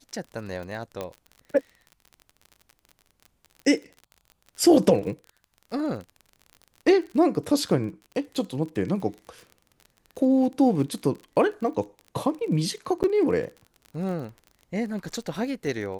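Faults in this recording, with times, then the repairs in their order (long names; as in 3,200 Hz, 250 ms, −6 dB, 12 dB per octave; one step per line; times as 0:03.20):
surface crackle 42 per second −35 dBFS
0:01.01: click −18 dBFS
0:13.03–0:13.04: drop-out 9.1 ms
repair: click removal
repair the gap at 0:13.03, 9.1 ms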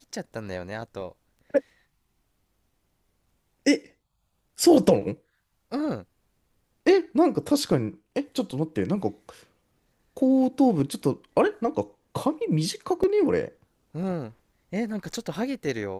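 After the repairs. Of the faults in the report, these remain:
0:01.01: click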